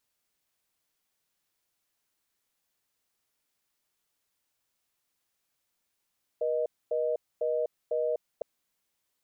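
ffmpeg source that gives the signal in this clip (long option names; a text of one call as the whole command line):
ffmpeg -f lavfi -i "aevalsrc='0.0376*(sin(2*PI*480*t)+sin(2*PI*620*t))*clip(min(mod(t,0.5),0.25-mod(t,0.5))/0.005,0,1)':duration=2.01:sample_rate=44100" out.wav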